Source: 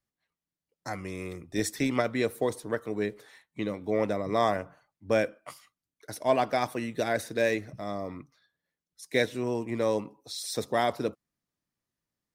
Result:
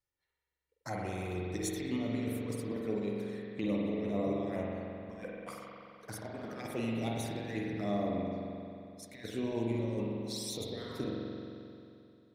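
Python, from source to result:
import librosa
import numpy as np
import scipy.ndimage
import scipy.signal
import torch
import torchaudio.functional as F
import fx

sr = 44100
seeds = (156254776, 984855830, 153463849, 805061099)

y = fx.over_compress(x, sr, threshold_db=-31.0, ratio=-0.5)
y = fx.env_flanger(y, sr, rest_ms=2.2, full_db=-29.0)
y = fx.rev_spring(y, sr, rt60_s=2.7, pass_ms=(44,), chirp_ms=20, drr_db=-3.0)
y = F.gain(torch.from_numpy(y), -5.5).numpy()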